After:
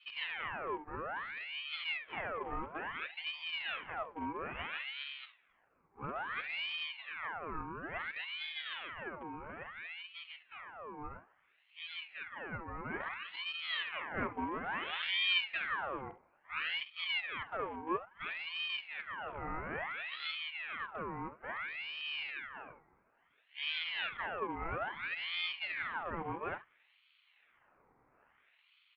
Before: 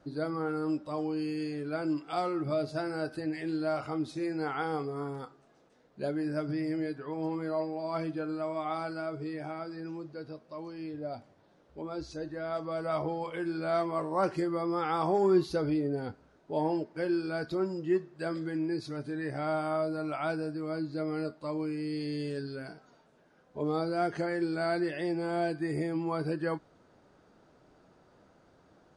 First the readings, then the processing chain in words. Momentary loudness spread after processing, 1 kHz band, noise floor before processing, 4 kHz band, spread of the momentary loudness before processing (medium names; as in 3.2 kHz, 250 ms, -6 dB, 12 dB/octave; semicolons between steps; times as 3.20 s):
10 LU, -5.0 dB, -64 dBFS, +10.0 dB, 9 LU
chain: rattle on loud lows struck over -39 dBFS, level -28 dBFS; pre-echo 55 ms -20.5 dB; in parallel at -6 dB: sample-rate reducer 1.3 kHz, jitter 0%; on the sum: Chebyshev low-pass 1.7 kHz, order 4; on a send: early reflections 47 ms -14.5 dB, 67 ms -15 dB; on the sum: ring modulator with a swept carrier 1.7 kHz, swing 65%, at 0.59 Hz; trim -7 dB